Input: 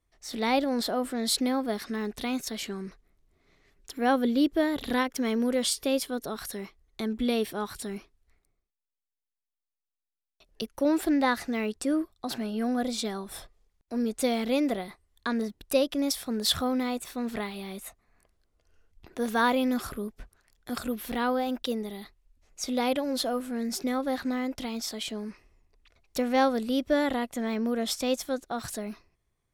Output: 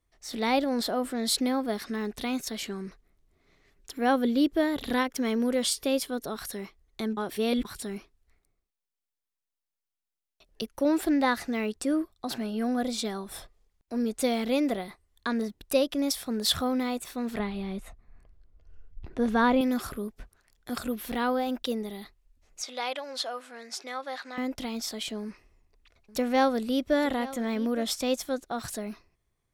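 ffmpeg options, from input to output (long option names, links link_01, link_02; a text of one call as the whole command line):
ffmpeg -i in.wav -filter_complex "[0:a]asettb=1/sr,asplit=3[link_01][link_02][link_03];[link_01]atrim=end=17.394[link_04];[link_02]atrim=start=17.39:end=19.61,asetpts=PTS-STARTPTS,afade=type=in:duration=0.004:curve=qsin,afade=type=out:start_time=2.216:duration=0.004:curve=qsin,aemphasis=mode=reproduction:type=bsi[link_05];[link_03]atrim=start=19.606[link_06];[link_04][link_05]acrossfade=duration=0.004:curve1=hsin:curve2=qsin[link_07];[link_07][link_06]acrossfade=duration=0.004:curve1=qsin:curve2=hsin,asettb=1/sr,asplit=3[link_08][link_09][link_10];[link_08]atrim=end=22.624[link_11];[link_09]atrim=start=22.62:end=24.38,asetpts=PTS-STARTPTS,afade=type=in:duration=0.004:curve=qsin,afade=type=out:start_time=1.756:duration=0.004:curve=qsin,highpass=770,lowpass=7000[link_12];[link_10]atrim=start=24.376[link_13];[link_11][link_12]acrossfade=duration=0.004:curve1=hsin:curve2=qsin[link_14];[link_14][link_13]acrossfade=duration=0.004:curve1=qsin:curve2=hsin,asettb=1/sr,asplit=3[link_15][link_16][link_17];[link_15]atrim=end=25.224[link_18];[link_16]atrim=start=25.22:end=27.83,asetpts=PTS-STARTPTS,afade=type=in:duration=0.004:curve=qsin,afade=type=out:start_time=2.606:duration=0.004:curve=qsin,aecho=1:1:863:0.141,atrim=end_sample=115101[link_19];[link_17]atrim=start=27.826[link_20];[link_18][link_19]acrossfade=duration=0.004:curve1=hsin:curve2=qsin[link_21];[link_21][link_20]acrossfade=duration=0.004:curve1=qsin:curve2=hsin,asplit=3[link_22][link_23][link_24];[link_22]atrim=end=7.172[link_25];[link_23]atrim=start=7.168:end=7.652,asetpts=PTS-STARTPTS,areverse[link_26];[link_24]atrim=start=7.648[link_27];[link_25][link_26]acrossfade=duration=0.004:curve1=hsin:curve2=hsin[link_28];[link_28][link_27]acrossfade=duration=0.004:curve1=hsin:curve2=hsin" out.wav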